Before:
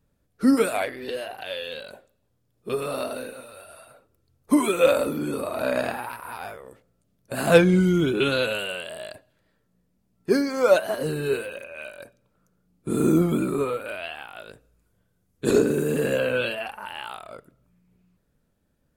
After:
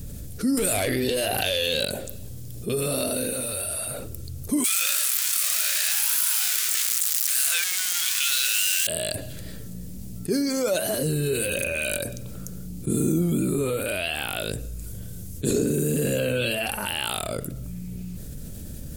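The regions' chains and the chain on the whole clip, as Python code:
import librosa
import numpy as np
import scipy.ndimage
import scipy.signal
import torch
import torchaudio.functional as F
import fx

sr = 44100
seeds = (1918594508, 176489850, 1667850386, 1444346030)

y = fx.chain(x, sr, fx.tube_stage(drive_db=17.0, bias=0.35),
    fx.env_flatten(amount_pct=70), at=(0.57, 1.85))
y = fx.chain(y, sr, fx.zero_step(step_db=-18.0),
    fx.highpass(hz=1300.0, slope=24), at=(4.64, 8.87))
y = fx.chain(y, sr, fx.peak_eq(hz=750.0, db=-4.5, octaves=2.0),
    fx.env_flatten(amount_pct=70), at=(11.34, 11.98))
y = fx.curve_eq(y, sr, hz=(100.0, 630.0, 980.0, 7600.0), db=(0, -12, -20, 2))
y = fx.env_flatten(y, sr, amount_pct=70)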